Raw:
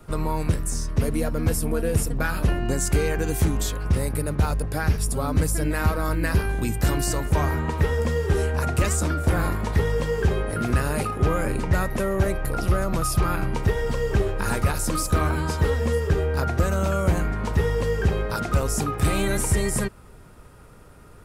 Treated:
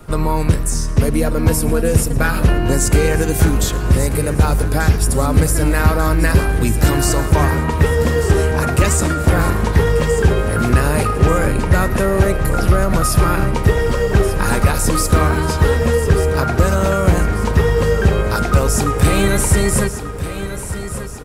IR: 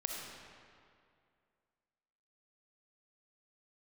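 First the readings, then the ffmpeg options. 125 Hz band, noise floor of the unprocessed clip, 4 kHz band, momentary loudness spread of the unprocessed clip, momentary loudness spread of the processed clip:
+8.0 dB, -46 dBFS, +8.5 dB, 3 LU, 3 LU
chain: -filter_complex "[0:a]aecho=1:1:1189|2378|3567|4756|5945|7134:0.266|0.141|0.0747|0.0396|0.021|0.0111,asplit=2[a][b];[1:a]atrim=start_sample=2205,adelay=111[c];[b][c]afir=irnorm=-1:irlink=0,volume=-18dB[d];[a][d]amix=inputs=2:normalize=0,volume=8dB"

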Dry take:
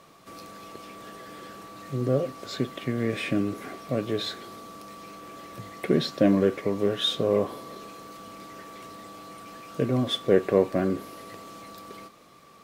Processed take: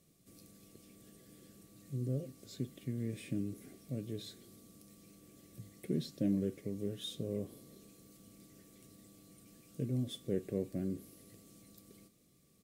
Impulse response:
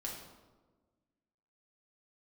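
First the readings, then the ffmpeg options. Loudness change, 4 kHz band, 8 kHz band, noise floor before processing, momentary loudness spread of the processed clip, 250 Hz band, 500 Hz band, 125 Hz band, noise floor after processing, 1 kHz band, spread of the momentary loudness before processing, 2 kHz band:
-13.0 dB, -18.0 dB, -8.5 dB, -53 dBFS, 22 LU, -11.0 dB, -17.5 dB, -7.5 dB, -68 dBFS, under -25 dB, 20 LU, -23.0 dB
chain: -af "firequalizer=gain_entry='entry(120,0);entry(970,-27);entry(2000,-15);entry(8500,1)':delay=0.05:min_phase=1,volume=-7dB"

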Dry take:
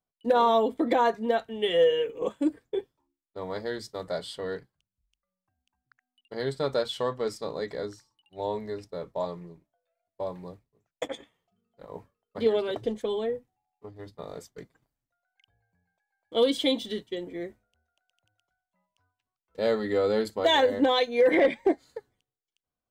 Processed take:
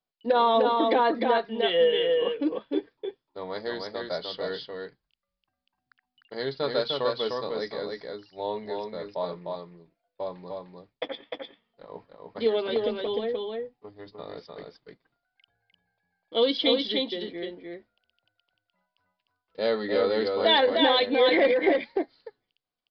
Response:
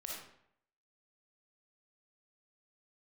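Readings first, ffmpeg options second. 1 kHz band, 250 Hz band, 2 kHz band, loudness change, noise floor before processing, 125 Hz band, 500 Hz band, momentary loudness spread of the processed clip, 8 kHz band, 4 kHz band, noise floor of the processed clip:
+2.0 dB, 0.0 dB, +3.0 dB, +1.5 dB, under -85 dBFS, -3.5 dB, +1.0 dB, 20 LU, under -15 dB, +5.0 dB, under -85 dBFS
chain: -filter_complex "[0:a]highshelf=f=3.7k:g=7.5,asplit=2[a][b];[b]aecho=0:1:302:0.668[c];[a][c]amix=inputs=2:normalize=0,aresample=11025,aresample=44100,equalizer=f=71:w=0.78:g=-11.5"

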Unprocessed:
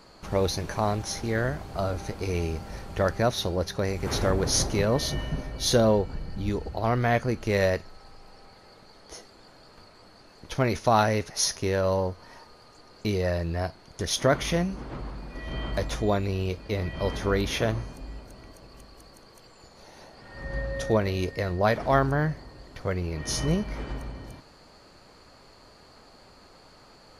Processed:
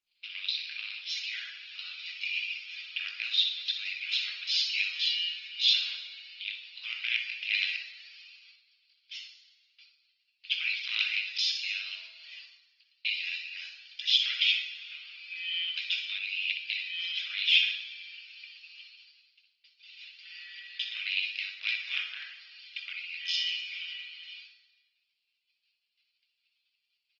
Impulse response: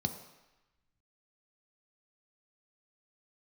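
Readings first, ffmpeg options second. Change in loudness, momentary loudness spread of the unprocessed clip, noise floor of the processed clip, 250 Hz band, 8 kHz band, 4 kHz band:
-3.0 dB, 15 LU, -79 dBFS, under -40 dB, -18.0 dB, +7.5 dB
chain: -filter_complex "[0:a]agate=range=-51dB:threshold=-48dB:ratio=16:detection=peak,equalizer=f=4.3k:t=o:w=0.78:g=3.5,asplit=2[a][b];[b]acompressor=threshold=-36dB:ratio=8,volume=0dB[c];[a][c]amix=inputs=2:normalize=0,aeval=exprs='val(0)*sin(2*PI*86*n/s)':c=same,crystalizer=i=0.5:c=0,aresample=11025,aeval=exprs='clip(val(0),-1,0.0944)':c=same,aresample=44100,aeval=exprs='val(0)+0.00141*(sin(2*PI*60*n/s)+sin(2*PI*2*60*n/s)/2+sin(2*PI*3*60*n/s)/3+sin(2*PI*4*60*n/s)/4+sin(2*PI*5*60*n/s)/5)':c=same,asuperpass=centerf=4200:order=8:qfactor=0.83,asplit=2[d][e];[e]adelay=20,volume=-11dB[f];[d][f]amix=inputs=2:normalize=0,asplit=2[g][h];[h]adelay=61,lowpass=f=3.3k:p=1,volume=-5.5dB,asplit=2[i][j];[j]adelay=61,lowpass=f=3.3k:p=1,volume=0.52,asplit=2[k][l];[l]adelay=61,lowpass=f=3.3k:p=1,volume=0.52,asplit=2[m][n];[n]adelay=61,lowpass=f=3.3k:p=1,volume=0.52,asplit=2[o][p];[p]adelay=61,lowpass=f=3.3k:p=1,volume=0.52,asplit=2[q][r];[r]adelay=61,lowpass=f=3.3k:p=1,volume=0.52,asplit=2[s][t];[t]adelay=61,lowpass=f=3.3k:p=1,volume=0.52[u];[g][i][k][m][o][q][s][u]amix=inputs=8:normalize=0[v];[1:a]atrim=start_sample=2205,afade=t=out:st=0.42:d=0.01,atrim=end_sample=18963,asetrate=26901,aresample=44100[w];[v][w]afir=irnorm=-1:irlink=0" -ar 48000 -c:a libopus -b:a 16k

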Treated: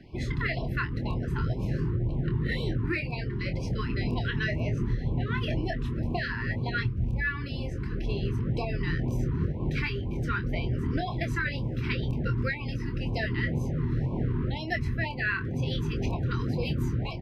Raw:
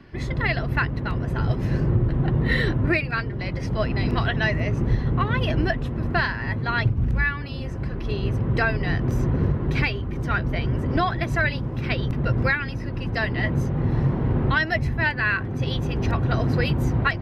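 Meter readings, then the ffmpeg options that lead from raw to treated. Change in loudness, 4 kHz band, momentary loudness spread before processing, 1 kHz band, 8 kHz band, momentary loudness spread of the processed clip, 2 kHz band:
-6.5 dB, -6.0 dB, 5 LU, -9.5 dB, n/a, 3 LU, -8.0 dB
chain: -filter_complex "[0:a]acompressor=threshold=-22dB:ratio=6,asplit=2[a][b];[b]adelay=25,volume=-7.5dB[c];[a][c]amix=inputs=2:normalize=0,afftfilt=real='re*(1-between(b*sr/1024,600*pow(1600/600,0.5+0.5*sin(2*PI*2*pts/sr))/1.41,600*pow(1600/600,0.5+0.5*sin(2*PI*2*pts/sr))*1.41))':imag='im*(1-between(b*sr/1024,600*pow(1600/600,0.5+0.5*sin(2*PI*2*pts/sr))/1.41,600*pow(1600/600,0.5+0.5*sin(2*PI*2*pts/sr))*1.41))':win_size=1024:overlap=0.75,volume=-3dB"

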